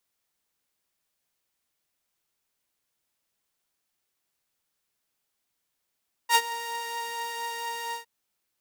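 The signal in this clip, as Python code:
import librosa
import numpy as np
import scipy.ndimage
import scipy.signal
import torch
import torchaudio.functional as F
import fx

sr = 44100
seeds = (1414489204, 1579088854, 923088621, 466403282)

y = fx.sub_patch_wobble(sr, seeds[0], note=82, wave='saw', wave2='saw', interval_st=0, level2_db=-9.0, sub_db=-15.0, noise_db=-15, kind='highpass', cutoff_hz=110.0, q=0.81, env_oct=2.5, env_decay_s=0.27, env_sustain_pct=40, attack_ms=59.0, decay_s=0.06, sustain_db=-18, release_s=0.11, note_s=1.65, lfo_hz=6.0, wobble_oct=1.1)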